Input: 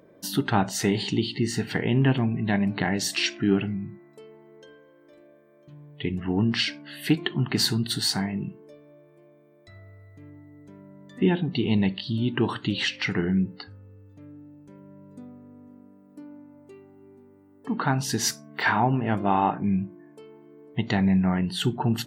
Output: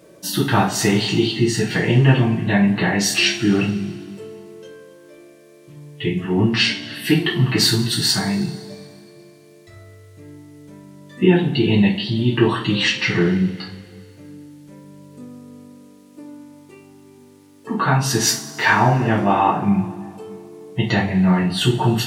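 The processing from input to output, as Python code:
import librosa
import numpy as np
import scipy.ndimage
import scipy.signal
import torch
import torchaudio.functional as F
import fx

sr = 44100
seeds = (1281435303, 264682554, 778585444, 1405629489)

y = fx.rev_double_slope(x, sr, seeds[0], early_s=0.33, late_s=2.2, knee_db=-20, drr_db=-8.0)
y = fx.dmg_noise_band(y, sr, seeds[1], low_hz=1500.0, high_hz=12000.0, level_db=-62.0)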